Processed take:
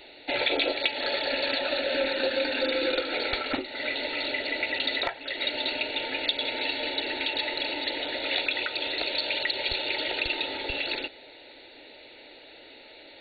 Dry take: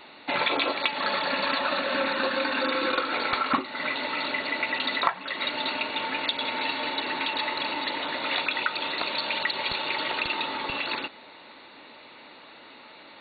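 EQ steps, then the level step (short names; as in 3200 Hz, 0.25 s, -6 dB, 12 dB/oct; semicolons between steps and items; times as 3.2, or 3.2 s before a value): low shelf 72 Hz +10 dB; fixed phaser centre 460 Hz, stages 4; +2.5 dB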